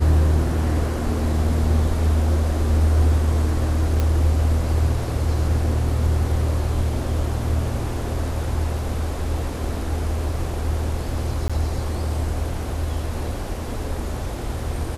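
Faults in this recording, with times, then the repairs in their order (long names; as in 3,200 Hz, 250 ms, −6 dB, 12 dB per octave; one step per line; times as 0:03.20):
0:04.00: click −10 dBFS
0:11.48–0:11.50: drop-out 16 ms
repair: click removal
repair the gap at 0:11.48, 16 ms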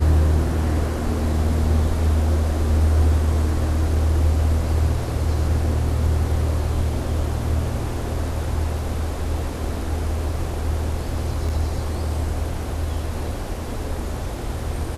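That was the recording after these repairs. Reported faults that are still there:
none of them is left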